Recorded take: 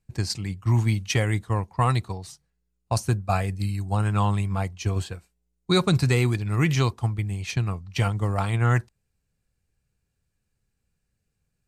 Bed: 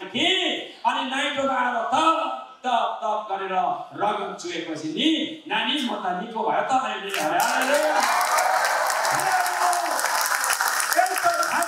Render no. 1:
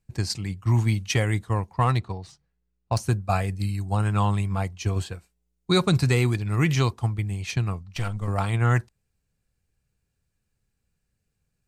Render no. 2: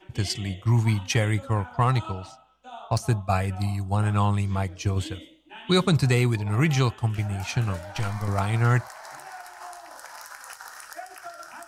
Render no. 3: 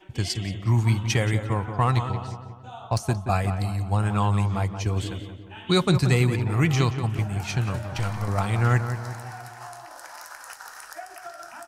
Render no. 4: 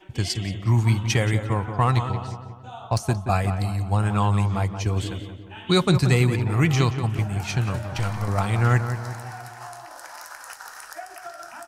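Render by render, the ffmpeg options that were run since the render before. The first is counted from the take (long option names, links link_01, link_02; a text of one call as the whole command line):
ffmpeg -i in.wav -filter_complex "[0:a]asettb=1/sr,asplit=3[link_01][link_02][link_03];[link_01]atrim=end=1.784[link_04];[link_02]atrim=start=1.78:end=3,asetpts=PTS-STARTPTS,afade=type=in:duration=0.004:curve=qsin,afade=type=out:start_time=1.216:duration=0.004:curve=qsin,adynamicsmooth=sensitivity=3.5:basefreq=4700[link_05];[link_03]atrim=start=2.996[link_06];[link_04][link_05]acrossfade=duration=0.004:curve1=hsin:curve2=qsin[link_07];[link_07][link_06]acrossfade=duration=0.004:curve1=qsin:curve2=hsin,asettb=1/sr,asplit=3[link_08][link_09][link_10];[link_08]atrim=end=7.834[link_11];[link_09]atrim=start=7.83:end=8.28,asetpts=PTS-STARTPTS,afade=type=in:duration=0.004:curve=qsin,afade=type=out:start_time=0.446:duration=0.004:curve=qsin,aeval=exprs='(tanh(12.6*val(0)+0.65)-tanh(0.65))/12.6':channel_layout=same[link_12];[link_10]atrim=start=8.276[link_13];[link_11][link_12]acrossfade=duration=0.004:curve1=hsin:curve2=qsin[link_14];[link_14][link_13]acrossfade=duration=0.004:curve1=qsin:curve2=hsin" out.wav
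ffmpeg -i in.wav -i bed.wav -filter_complex "[1:a]volume=-19.5dB[link_01];[0:a][link_01]amix=inputs=2:normalize=0" out.wav
ffmpeg -i in.wav -filter_complex "[0:a]asplit=2[link_01][link_02];[link_02]adelay=177,lowpass=frequency=2000:poles=1,volume=-8.5dB,asplit=2[link_03][link_04];[link_04]adelay=177,lowpass=frequency=2000:poles=1,volume=0.53,asplit=2[link_05][link_06];[link_06]adelay=177,lowpass=frequency=2000:poles=1,volume=0.53,asplit=2[link_07][link_08];[link_08]adelay=177,lowpass=frequency=2000:poles=1,volume=0.53,asplit=2[link_09][link_10];[link_10]adelay=177,lowpass=frequency=2000:poles=1,volume=0.53,asplit=2[link_11][link_12];[link_12]adelay=177,lowpass=frequency=2000:poles=1,volume=0.53[link_13];[link_01][link_03][link_05][link_07][link_09][link_11][link_13]amix=inputs=7:normalize=0" out.wav
ffmpeg -i in.wav -af "volume=1.5dB" out.wav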